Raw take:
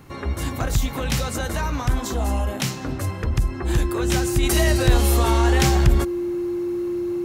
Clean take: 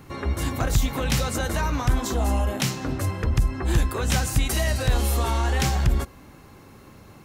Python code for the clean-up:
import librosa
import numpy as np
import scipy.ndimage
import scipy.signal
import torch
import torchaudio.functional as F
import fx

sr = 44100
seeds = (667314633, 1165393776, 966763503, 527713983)

y = fx.notch(x, sr, hz=350.0, q=30.0)
y = fx.gain(y, sr, db=fx.steps((0.0, 0.0), (4.43, -4.5)))